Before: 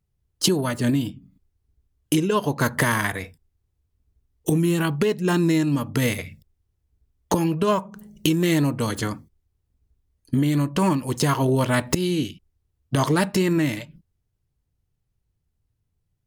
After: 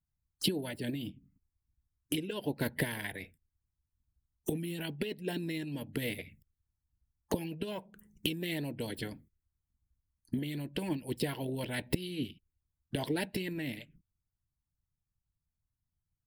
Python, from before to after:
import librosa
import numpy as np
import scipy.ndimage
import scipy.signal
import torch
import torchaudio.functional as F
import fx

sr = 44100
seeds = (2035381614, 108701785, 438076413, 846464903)

y = fx.hpss(x, sr, part='harmonic', gain_db=-11)
y = fx.env_phaser(y, sr, low_hz=480.0, high_hz=1200.0, full_db=-29.0)
y = y * librosa.db_to_amplitude(-6.5)